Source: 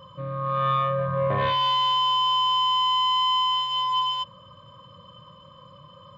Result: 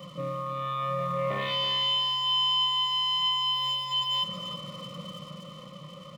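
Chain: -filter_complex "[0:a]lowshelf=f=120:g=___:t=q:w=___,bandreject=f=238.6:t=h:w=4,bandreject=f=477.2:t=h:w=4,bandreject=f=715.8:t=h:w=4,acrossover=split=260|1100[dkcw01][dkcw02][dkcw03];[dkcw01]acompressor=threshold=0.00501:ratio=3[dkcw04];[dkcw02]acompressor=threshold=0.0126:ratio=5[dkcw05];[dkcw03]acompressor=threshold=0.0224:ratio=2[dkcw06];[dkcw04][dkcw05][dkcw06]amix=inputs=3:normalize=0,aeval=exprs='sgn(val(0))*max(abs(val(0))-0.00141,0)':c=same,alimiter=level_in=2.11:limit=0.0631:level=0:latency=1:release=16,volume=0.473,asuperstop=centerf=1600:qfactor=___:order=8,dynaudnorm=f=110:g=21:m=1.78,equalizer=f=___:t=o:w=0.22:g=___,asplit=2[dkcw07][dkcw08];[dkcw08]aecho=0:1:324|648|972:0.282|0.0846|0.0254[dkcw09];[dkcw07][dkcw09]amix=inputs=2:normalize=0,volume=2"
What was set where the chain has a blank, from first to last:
-13, 3, 4.8, 970, -14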